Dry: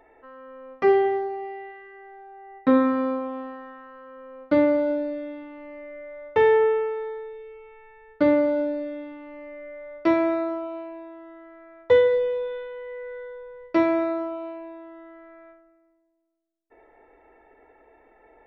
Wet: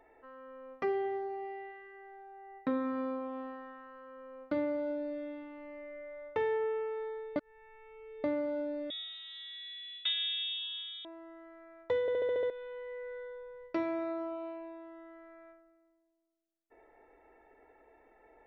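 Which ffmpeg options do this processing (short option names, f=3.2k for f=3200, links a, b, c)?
-filter_complex "[0:a]asettb=1/sr,asplit=3[a][b][c];[a]atrim=end=8.904[d];[b]atrim=start=8.9:end=11.05,asetpts=PTS-STARTPTS,afade=t=in:d=0.004:c=qsin,afade=t=out:st=2.146:d=0.004:c=qsin,lowpass=f=3.4k:t=q:w=0.5098,lowpass=f=3.4k:t=q:w=0.6013,lowpass=f=3.4k:t=q:w=0.9,lowpass=f=3.4k:t=q:w=2.563,afreqshift=-4000[e];[c]atrim=start=11.046[f];[d][e]acrossfade=d=0.004:c1=hsin:c2=qsin[g];[g][f]acrossfade=d=0.004:c1=qsin:c2=hsin,asplit=10[h][i][j][k][l][m][n][o][p][q];[h]atrim=end=7.362[r];[i]atrim=start=7.358:end=8.242,asetpts=PTS-STARTPTS,areverse[s];[j]atrim=start=8.238:end=12.082[t];[k]atrim=start=12.008:end=12.082[u];[l]atrim=start=12.008:end=12.082[v];[m]atrim=start=12.008:end=12.082[w];[n]atrim=start=12.008:end=12.082[x];[o]atrim=start=12.008:end=12.082[y];[p]atrim=start=12.008:end=12.082[z];[q]atrim=start=12.498[aa];[r][s]acrossfade=d=0.004:c1=hsin:c2=hsin[ab];[ab][t]acrossfade=d=0.004:c1=hsin:c2=hsin[ac];[ac][u]acrossfade=d=0.004:c1=hsin:c2=hsin[ad];[ad][v]acrossfade=d=0.004:c1=hsin:c2=hsin[ae];[ae][w]acrossfade=d=0.004:c1=hsin:c2=hsin[af];[af][x]acrossfade=d=0.004:c1=hsin:c2=hsin[ag];[ag][y]acrossfade=d=0.004:c1=hsin:c2=hsin[ah];[ah][z]acrossfade=d=0.004:c1=hsin:c2=hsin[ai];[ai][aa]acrossfade=d=0.004:c1=hsin:c2=hsin,acompressor=threshold=-29dB:ratio=2,volume=-6.5dB"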